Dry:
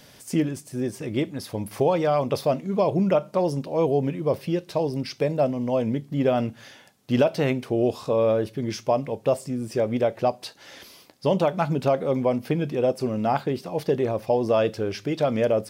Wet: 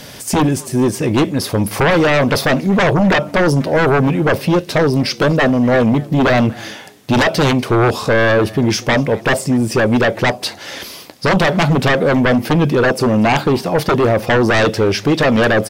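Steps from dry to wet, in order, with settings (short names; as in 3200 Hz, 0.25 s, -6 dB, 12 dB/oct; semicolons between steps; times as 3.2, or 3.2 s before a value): sine folder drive 12 dB, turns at -9 dBFS; frequency-shifting echo 0.242 s, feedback 30%, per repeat +91 Hz, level -23.5 dB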